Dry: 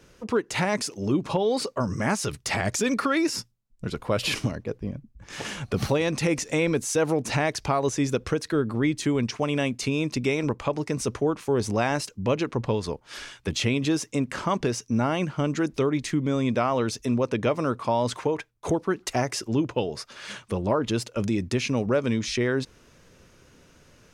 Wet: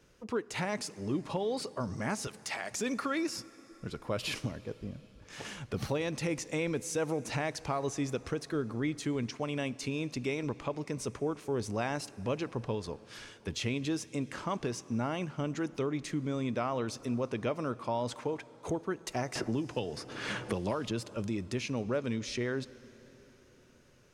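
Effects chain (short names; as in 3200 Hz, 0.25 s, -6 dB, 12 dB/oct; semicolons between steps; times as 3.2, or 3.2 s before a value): 2.27–2.71 Bessel high-pass 640 Hz; plate-style reverb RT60 4.7 s, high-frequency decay 0.85×, DRR 18 dB; 19.35–21.16 three-band squash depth 100%; gain -9 dB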